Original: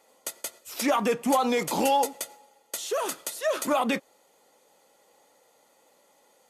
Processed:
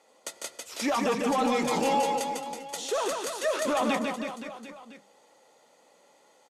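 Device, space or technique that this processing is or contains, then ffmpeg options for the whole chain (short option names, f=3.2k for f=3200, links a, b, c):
soft clipper into limiter: -af "highpass=79,bandreject=f=50:t=h:w=6,bandreject=f=100:t=h:w=6,bandreject=f=150:t=h:w=6,bandreject=f=200:t=h:w=6,asoftclip=type=tanh:threshold=-16.5dB,alimiter=limit=-20.5dB:level=0:latency=1,lowpass=7.8k,aecho=1:1:150|322.5|520.9|749|1011:0.631|0.398|0.251|0.158|0.1"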